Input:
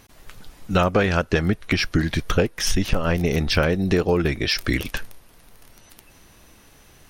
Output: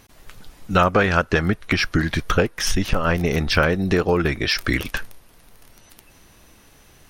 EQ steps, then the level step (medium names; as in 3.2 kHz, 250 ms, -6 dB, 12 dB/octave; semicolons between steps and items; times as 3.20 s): dynamic bell 1.3 kHz, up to +6 dB, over -36 dBFS, Q 1.1; 0.0 dB